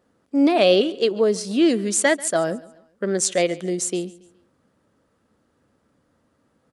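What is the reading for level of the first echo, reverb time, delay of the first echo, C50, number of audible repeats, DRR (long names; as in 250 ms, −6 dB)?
−21.0 dB, no reverb audible, 139 ms, no reverb audible, 2, no reverb audible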